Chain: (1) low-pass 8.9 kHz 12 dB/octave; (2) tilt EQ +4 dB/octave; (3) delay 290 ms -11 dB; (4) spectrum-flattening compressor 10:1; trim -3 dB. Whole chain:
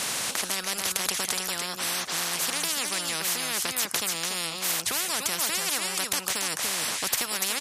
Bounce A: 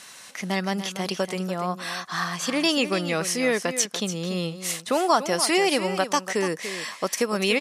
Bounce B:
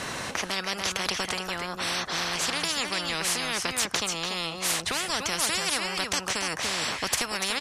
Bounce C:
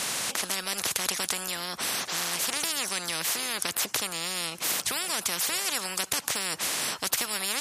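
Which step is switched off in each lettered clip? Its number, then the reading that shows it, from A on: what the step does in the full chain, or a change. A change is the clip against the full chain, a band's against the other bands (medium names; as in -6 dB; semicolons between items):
4, 8 kHz band -14.0 dB; 2, 8 kHz band -6.5 dB; 3, loudness change -1.5 LU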